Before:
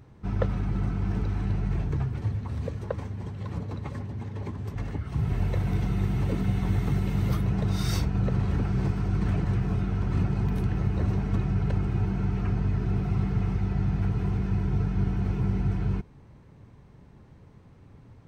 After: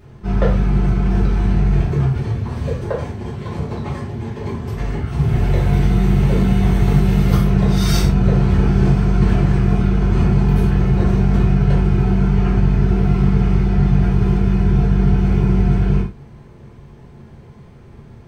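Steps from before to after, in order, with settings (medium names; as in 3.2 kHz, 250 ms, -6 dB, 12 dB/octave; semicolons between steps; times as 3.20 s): gated-style reverb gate 140 ms falling, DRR -6.5 dB; trim +4 dB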